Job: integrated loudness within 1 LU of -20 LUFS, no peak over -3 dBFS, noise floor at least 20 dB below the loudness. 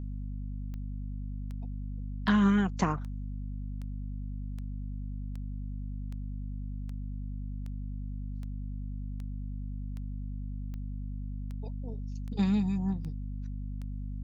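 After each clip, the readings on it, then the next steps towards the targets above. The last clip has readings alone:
clicks found 18; hum 50 Hz; highest harmonic 250 Hz; hum level -34 dBFS; loudness -35.5 LUFS; peak level -13.0 dBFS; loudness target -20.0 LUFS
-> de-click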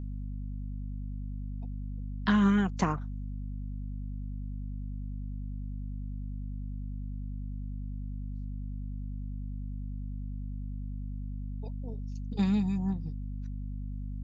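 clicks found 0; hum 50 Hz; highest harmonic 250 Hz; hum level -34 dBFS
-> de-hum 50 Hz, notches 5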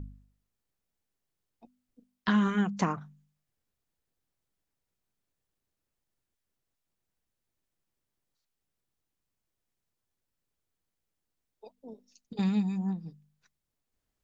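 hum not found; loudness -30.0 LUFS; peak level -14.0 dBFS; loudness target -20.0 LUFS
-> trim +10 dB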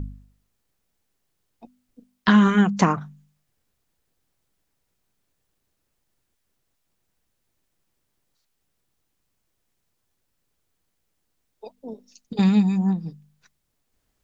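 loudness -20.0 LUFS; peak level -4.0 dBFS; noise floor -75 dBFS

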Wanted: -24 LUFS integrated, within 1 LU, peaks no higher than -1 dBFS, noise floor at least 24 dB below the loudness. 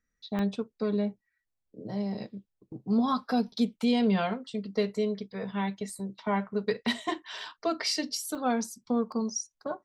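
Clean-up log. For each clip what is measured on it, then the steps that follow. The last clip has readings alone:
dropouts 4; longest dropout 1.4 ms; loudness -30.5 LUFS; peak level -15.5 dBFS; loudness target -24.0 LUFS
-> interpolate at 0.39/5.90/8.35/9.12 s, 1.4 ms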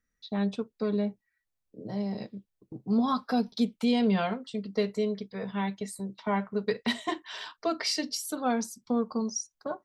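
dropouts 0; loudness -30.5 LUFS; peak level -15.5 dBFS; loudness target -24.0 LUFS
-> trim +6.5 dB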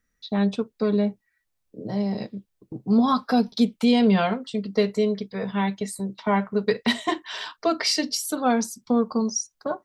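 loudness -24.0 LUFS; peak level -9.0 dBFS; noise floor -76 dBFS

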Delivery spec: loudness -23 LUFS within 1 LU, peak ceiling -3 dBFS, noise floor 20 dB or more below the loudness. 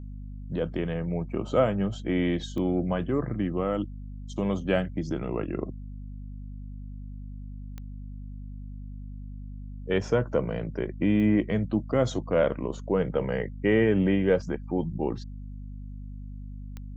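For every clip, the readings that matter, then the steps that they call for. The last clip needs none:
clicks found 4; hum 50 Hz; highest harmonic 250 Hz; hum level -36 dBFS; loudness -27.5 LUFS; peak level -10.5 dBFS; loudness target -23.0 LUFS
-> de-click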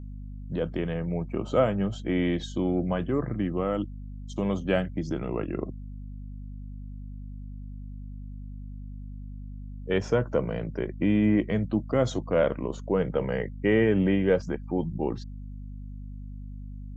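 clicks found 0; hum 50 Hz; highest harmonic 250 Hz; hum level -36 dBFS
-> hum notches 50/100/150/200/250 Hz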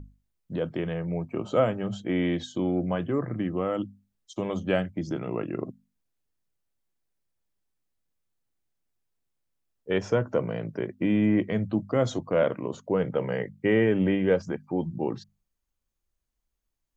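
hum not found; loudness -28.0 LUFS; peak level -11.0 dBFS; loudness target -23.0 LUFS
-> trim +5 dB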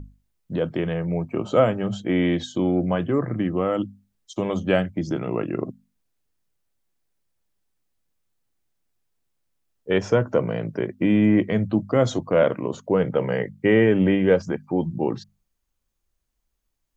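loudness -23.0 LUFS; peak level -6.0 dBFS; noise floor -76 dBFS

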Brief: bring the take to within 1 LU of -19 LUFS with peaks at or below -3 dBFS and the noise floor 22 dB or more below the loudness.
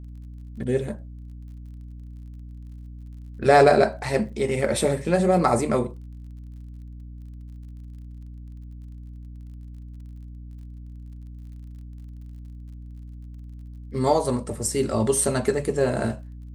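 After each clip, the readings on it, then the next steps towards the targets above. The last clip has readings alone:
tick rate 38 per s; hum 60 Hz; highest harmonic 300 Hz; hum level -37 dBFS; loudness -22.5 LUFS; peak level -4.5 dBFS; loudness target -19.0 LUFS
-> de-click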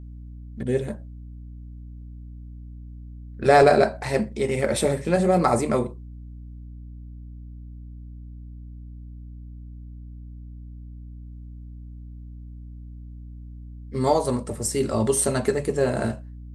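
tick rate 0.060 per s; hum 60 Hz; highest harmonic 300 Hz; hum level -37 dBFS
-> de-hum 60 Hz, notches 5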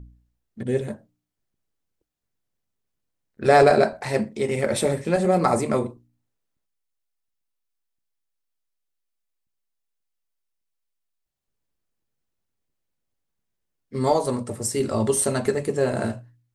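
hum not found; loudness -22.5 LUFS; peak level -4.5 dBFS; loudness target -19.0 LUFS
-> trim +3.5 dB; peak limiter -3 dBFS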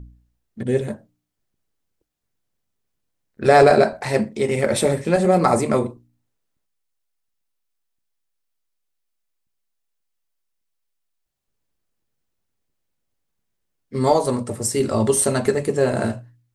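loudness -19.0 LUFS; peak level -3.0 dBFS; noise floor -76 dBFS

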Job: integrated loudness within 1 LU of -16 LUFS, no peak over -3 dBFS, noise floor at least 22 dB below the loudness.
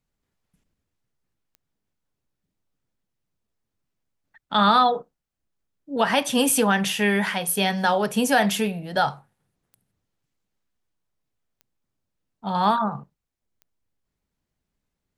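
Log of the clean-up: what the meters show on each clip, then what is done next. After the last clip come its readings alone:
clicks found 5; loudness -21.5 LUFS; peak level -6.5 dBFS; loudness target -16.0 LUFS
-> de-click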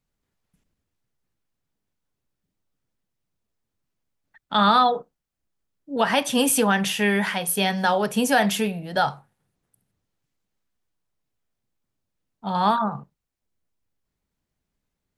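clicks found 0; loudness -21.5 LUFS; peak level -6.5 dBFS; loudness target -16.0 LUFS
-> trim +5.5 dB; peak limiter -3 dBFS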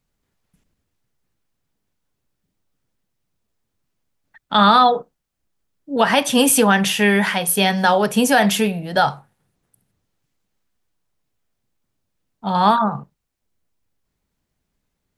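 loudness -16.5 LUFS; peak level -3.0 dBFS; noise floor -76 dBFS

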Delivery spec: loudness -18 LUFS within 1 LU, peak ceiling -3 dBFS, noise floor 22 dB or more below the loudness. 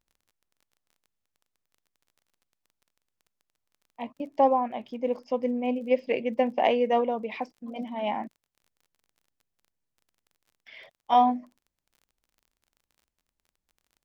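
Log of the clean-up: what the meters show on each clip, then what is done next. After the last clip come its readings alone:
tick rate 27 per s; loudness -27.0 LUFS; peak level -10.0 dBFS; loudness target -18.0 LUFS
-> de-click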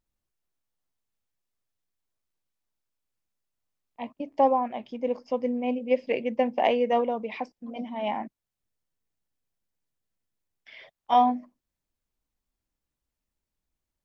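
tick rate 0 per s; loudness -27.0 LUFS; peak level -10.0 dBFS; loudness target -18.0 LUFS
-> trim +9 dB; peak limiter -3 dBFS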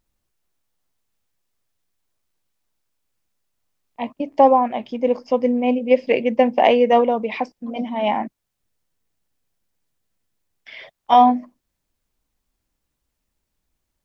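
loudness -18.5 LUFS; peak level -3.0 dBFS; noise floor -78 dBFS

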